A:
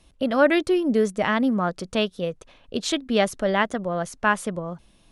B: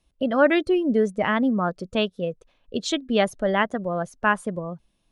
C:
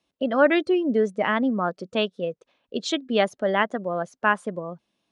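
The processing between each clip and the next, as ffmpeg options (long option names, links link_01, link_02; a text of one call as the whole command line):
ffmpeg -i in.wav -af "afftdn=noise_reduction=13:noise_floor=-33" out.wav
ffmpeg -i in.wav -af "highpass=210,lowpass=6800" out.wav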